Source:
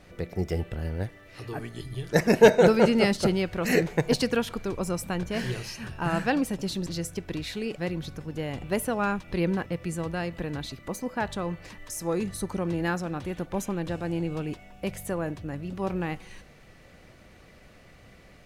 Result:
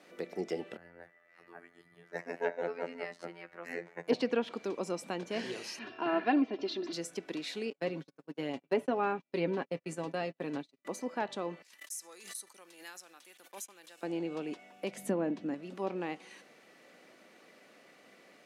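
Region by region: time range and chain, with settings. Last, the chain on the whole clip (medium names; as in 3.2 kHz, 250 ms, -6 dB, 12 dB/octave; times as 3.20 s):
0.77–4.08 s: FFT filter 130 Hz 0 dB, 180 Hz -16 dB, 360 Hz -14 dB, 620 Hz -9 dB, 920 Hz -8 dB, 1.9 kHz -4 dB, 3.3 kHz -19 dB + robot voice 85.8 Hz
5.79–6.93 s: low-pass 4.5 kHz 24 dB/octave + comb 2.9 ms, depth 81%
7.70–10.85 s: gate -34 dBFS, range -39 dB + bass shelf 250 Hz +5 dB + comb 7.3 ms, depth 50%
11.62–14.03 s: gate -40 dBFS, range -38 dB + differentiator + swell ahead of each attack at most 100 dB/s
14.97–15.54 s: peaking EQ 220 Hz +14 dB 0.88 oct + band-stop 1.2 kHz, Q 21
whole clip: high-pass 240 Hz 24 dB/octave; low-pass that closes with the level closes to 2.5 kHz, closed at -22 dBFS; dynamic bell 1.5 kHz, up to -5 dB, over -45 dBFS, Q 1.6; trim -3.5 dB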